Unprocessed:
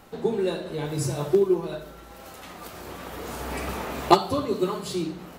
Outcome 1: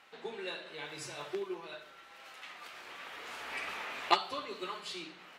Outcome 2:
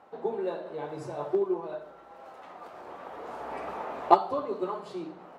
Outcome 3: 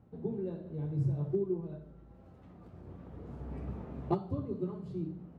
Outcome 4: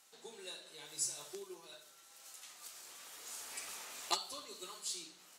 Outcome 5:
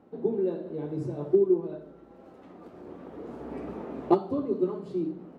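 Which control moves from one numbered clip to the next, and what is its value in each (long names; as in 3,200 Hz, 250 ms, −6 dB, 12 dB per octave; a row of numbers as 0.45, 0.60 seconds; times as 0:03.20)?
resonant band-pass, frequency: 2,400, 780, 110, 7,500, 300 Hertz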